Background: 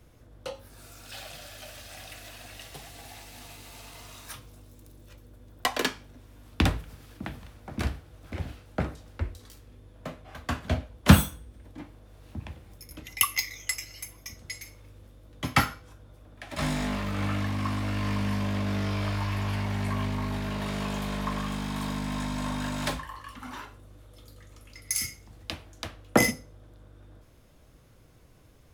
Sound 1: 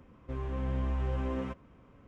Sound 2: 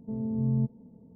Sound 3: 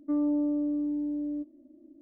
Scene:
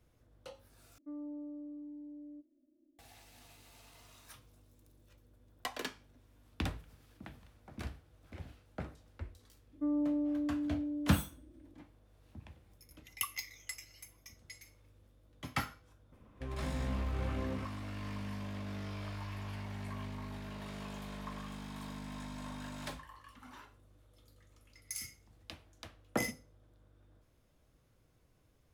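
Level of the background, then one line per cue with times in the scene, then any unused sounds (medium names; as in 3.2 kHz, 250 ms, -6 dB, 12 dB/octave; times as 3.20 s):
background -13 dB
0.98 s: replace with 3 -17 dB
9.73 s: add 3 -5.5 dB
16.12 s: add 1 -5 dB
not used: 2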